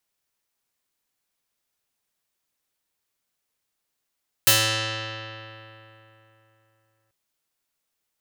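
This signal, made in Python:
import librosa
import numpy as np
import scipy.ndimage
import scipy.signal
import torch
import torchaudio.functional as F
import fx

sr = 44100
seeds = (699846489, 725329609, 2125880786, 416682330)

y = fx.pluck(sr, length_s=2.64, note=45, decay_s=3.32, pick=0.48, brightness='medium')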